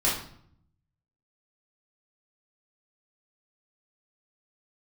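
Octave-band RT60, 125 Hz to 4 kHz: 1.2 s, 0.90 s, 0.65 s, 0.60 s, 0.55 s, 0.50 s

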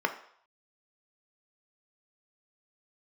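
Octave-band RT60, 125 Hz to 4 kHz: 0.30 s, 0.40 s, 0.60 s, 0.65 s, 0.60 s, 0.65 s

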